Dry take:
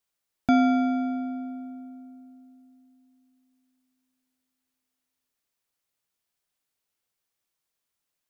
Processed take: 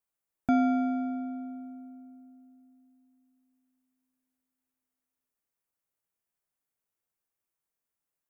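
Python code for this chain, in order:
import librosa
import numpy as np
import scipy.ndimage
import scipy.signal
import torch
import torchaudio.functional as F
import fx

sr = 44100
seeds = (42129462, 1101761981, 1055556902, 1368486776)

y = fx.peak_eq(x, sr, hz=4100.0, db=-10.5, octaves=1.4)
y = y * librosa.db_to_amplitude(-4.0)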